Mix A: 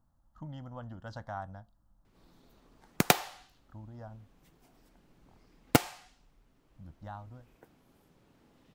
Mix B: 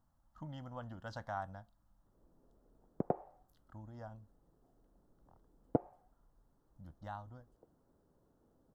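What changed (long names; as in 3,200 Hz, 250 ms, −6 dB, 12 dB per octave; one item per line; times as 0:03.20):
background: add transistor ladder low-pass 730 Hz, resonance 30%
master: add low-shelf EQ 340 Hz −4.5 dB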